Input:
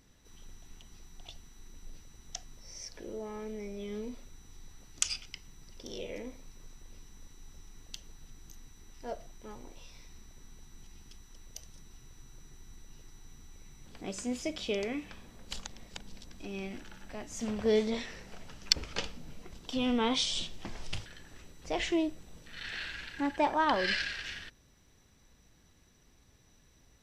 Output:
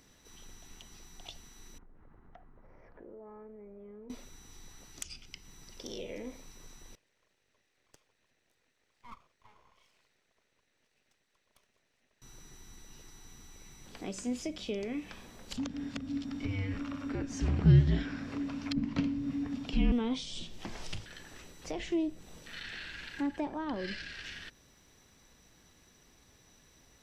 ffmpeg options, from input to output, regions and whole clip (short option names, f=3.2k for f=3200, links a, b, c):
-filter_complex "[0:a]asettb=1/sr,asplit=3[a][b][c];[a]atrim=end=1.784[d];[b]atrim=start=1.78:end=4.1,asetpts=PTS-STARTPTS,afade=t=in:d=0.004:c=qsin,afade=t=out:st=2.316:d=0.004:c=qsin,lowpass=f=1.5k:w=0.5412,lowpass=f=1.5k:w=1.3066,acompressor=threshold=-50dB:ratio=6:attack=3.2:release=140:knee=1:detection=peak[e];[c]atrim=start=4.096[f];[d][e]acrossfade=d=0.004:c1=hsin:c2=qsin[g];[g][f]acrossfade=d=0.004:c1=qsin:c2=hsin,asettb=1/sr,asplit=3[h][i][j];[h]atrim=end=6.954[k];[i]atrim=start=6.95:end=12.22,asetpts=PTS-STARTPTS,afade=t=in:d=0.004:c=qsin,afade=t=out:st=5.266:d=0.004:c=qsin,asplit=3[l][m][n];[l]bandpass=f=530:t=q:w=8,volume=0dB[o];[m]bandpass=f=1.84k:t=q:w=8,volume=-6dB[p];[n]bandpass=f=2.48k:t=q:w=8,volume=-9dB[q];[o][p][q]amix=inputs=3:normalize=0,lowshelf=f=160:t=q:w=3:g=8.5,aeval=exprs='abs(val(0))':c=same[r];[j]atrim=start=12.216[s];[k][r]acrossfade=d=0.004:c1=hsin:c2=qsin[t];[t][s]acrossfade=d=0.004:c1=qsin:c2=hsin,asettb=1/sr,asplit=3[u][v][w];[u]atrim=end=15.574[x];[v]atrim=start=15.57:end=19.92,asetpts=PTS-STARTPTS,afade=t=in:d=0.004:c=qsin,afade=t=out:st=4.346:d=0.004:c=qsin,acontrast=62,aemphasis=mode=reproduction:type=75fm,afreqshift=-290[y];[w]atrim=start=19.916[z];[x][y]acrossfade=d=0.004:c1=hsin:c2=qsin[aa];[aa][z]acrossfade=d=0.004:c1=qsin:c2=hsin,acrossover=split=340[ab][ac];[ac]acompressor=threshold=-46dB:ratio=5[ad];[ab][ad]amix=inputs=2:normalize=0,lowshelf=f=170:g=-8,volume=4.5dB"